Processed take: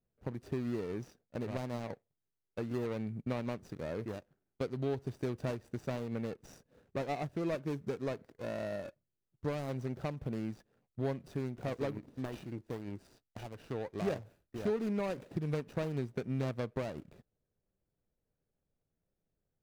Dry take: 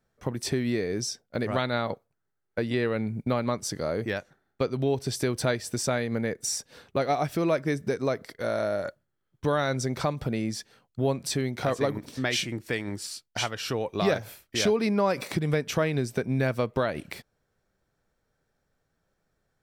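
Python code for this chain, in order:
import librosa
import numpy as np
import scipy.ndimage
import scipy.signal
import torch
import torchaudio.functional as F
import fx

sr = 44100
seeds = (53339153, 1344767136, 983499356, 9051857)

y = scipy.ndimage.median_filter(x, 41, mode='constant')
y = F.gain(torch.from_numpy(y), -8.0).numpy()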